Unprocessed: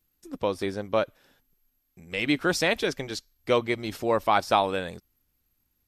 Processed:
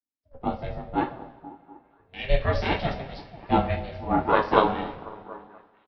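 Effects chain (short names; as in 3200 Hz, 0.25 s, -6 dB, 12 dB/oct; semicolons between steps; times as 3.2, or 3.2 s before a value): downsampling 11025 Hz; delay with a stepping band-pass 0.244 s, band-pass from 270 Hz, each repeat 0.7 oct, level -7 dB; reverb, pre-delay 3 ms, DRR -2.5 dB; ring modulator 270 Hz; high shelf 2900 Hz -10 dB; three-band expander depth 70%; gain -2 dB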